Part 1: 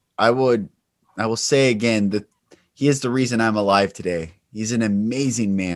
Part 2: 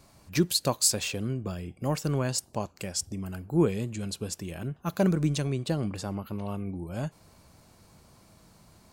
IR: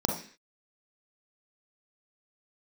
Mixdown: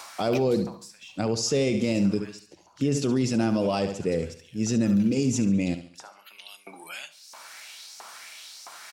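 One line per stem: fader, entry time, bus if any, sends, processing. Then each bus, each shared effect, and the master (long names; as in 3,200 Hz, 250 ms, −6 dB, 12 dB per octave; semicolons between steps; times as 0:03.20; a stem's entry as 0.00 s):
−0.5 dB, 0.00 s, no send, echo send −12.5 dB, parametric band 1,400 Hz −13 dB 1.3 octaves
−2.0 dB, 0.00 s, send −19 dB, echo send −20 dB, auto-filter high-pass saw up 1.5 Hz 960–5,900 Hz; multiband upward and downward compressor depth 100%; automatic ducking −13 dB, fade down 1.25 s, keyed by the first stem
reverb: on, RT60 0.45 s, pre-delay 36 ms
echo: repeating echo 70 ms, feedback 37%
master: high-shelf EQ 6,900 Hz −8.5 dB; brickwall limiter −15 dBFS, peak gain reduction 9.5 dB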